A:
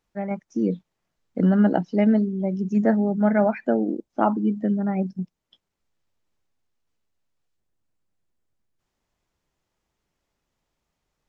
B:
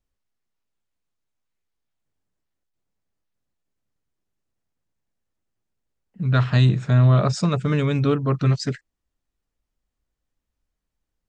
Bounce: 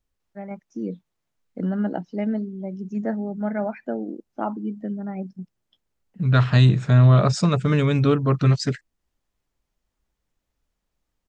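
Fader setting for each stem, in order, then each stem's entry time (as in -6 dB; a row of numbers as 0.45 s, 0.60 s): -6.5 dB, +1.5 dB; 0.20 s, 0.00 s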